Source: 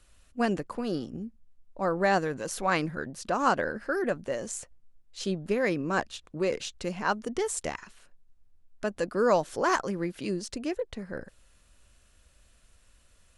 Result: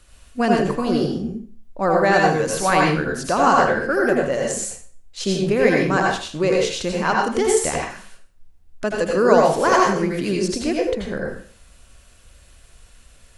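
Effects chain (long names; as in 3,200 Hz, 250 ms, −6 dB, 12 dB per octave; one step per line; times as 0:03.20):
in parallel at −1 dB: brickwall limiter −19.5 dBFS, peak gain reduction 8 dB
on the sum: convolution reverb RT60 0.45 s, pre-delay 74 ms, DRR −1.5 dB
level +2.5 dB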